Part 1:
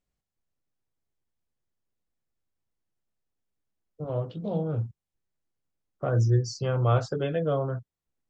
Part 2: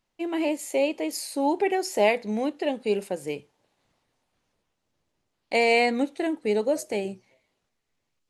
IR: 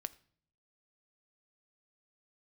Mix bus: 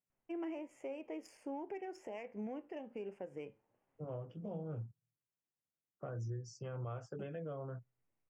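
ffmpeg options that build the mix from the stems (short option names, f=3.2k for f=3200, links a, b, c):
-filter_complex "[0:a]highpass=f=98:w=0.5412,highpass=f=98:w=1.3066,alimiter=limit=-16.5dB:level=0:latency=1:release=488,volume=-10.5dB,asplit=2[a][b];[b]volume=-23.5dB[c];[1:a]acompressor=threshold=-25dB:ratio=6,flanger=delay=7.4:depth=1.7:regen=78:speed=1.3:shape=sinusoidal,adynamicsmooth=sensitivity=3.5:basefreq=2.3k,adelay=100,volume=-4dB,asplit=3[d][e][f];[d]atrim=end=4.91,asetpts=PTS-STARTPTS,afade=t=out:st=4.906:d=0.004:c=hsin[g];[e]atrim=start=4.91:end=7.19,asetpts=PTS-STARTPTS,volume=0[h];[f]atrim=start=7.19,asetpts=PTS-STARTPTS,afade=t=in:d=0.004:c=hsin[i];[g][h][i]concat=n=3:v=0:a=1[j];[2:a]atrim=start_sample=2205[k];[c][k]afir=irnorm=-1:irlink=0[l];[a][j][l]amix=inputs=3:normalize=0,asuperstop=centerf=4000:order=4:qfactor=1.8,alimiter=level_in=11dB:limit=-24dB:level=0:latency=1:release=266,volume=-11dB"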